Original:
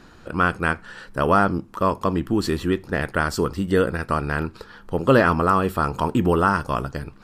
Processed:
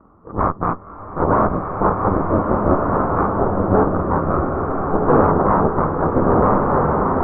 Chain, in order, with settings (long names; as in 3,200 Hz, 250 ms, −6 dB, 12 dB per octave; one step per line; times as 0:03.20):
partials spread apart or drawn together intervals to 87%
harmonic generator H 8 −9 dB, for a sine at −5 dBFS
Chebyshev low-pass filter 1,300 Hz, order 4
slow-attack reverb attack 1,620 ms, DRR 0 dB
level +1 dB